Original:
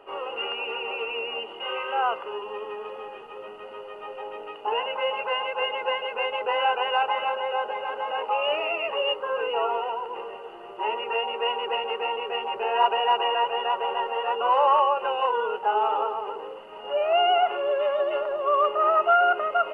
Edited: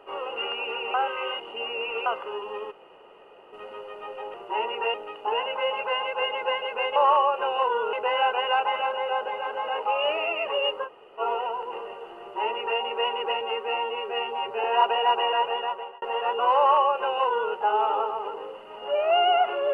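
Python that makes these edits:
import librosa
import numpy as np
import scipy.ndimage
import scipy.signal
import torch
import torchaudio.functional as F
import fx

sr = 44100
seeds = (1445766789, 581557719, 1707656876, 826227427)

y = fx.edit(x, sr, fx.reverse_span(start_s=0.94, length_s=1.12),
    fx.room_tone_fill(start_s=2.71, length_s=0.82, crossfade_s=0.02),
    fx.room_tone_fill(start_s=9.29, length_s=0.34, crossfade_s=0.06),
    fx.duplicate(start_s=10.63, length_s=0.6, to_s=4.34),
    fx.stretch_span(start_s=11.84, length_s=0.82, factor=1.5),
    fx.fade_out_span(start_s=13.52, length_s=0.52),
    fx.duplicate(start_s=14.59, length_s=0.97, to_s=6.36), tone=tone)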